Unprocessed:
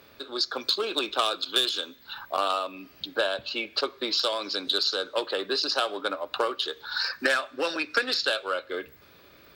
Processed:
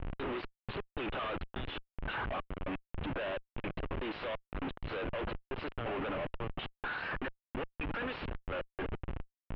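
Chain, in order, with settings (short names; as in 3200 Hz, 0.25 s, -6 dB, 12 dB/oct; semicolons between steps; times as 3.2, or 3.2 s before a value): step gate "xxxxx...x.." 169 bpm -24 dB; compressor 2.5:1, threshold -36 dBFS, peak gain reduction 11.5 dB; Schmitt trigger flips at -45.5 dBFS; Chebyshev low-pass 2900 Hz, order 4; gain +5 dB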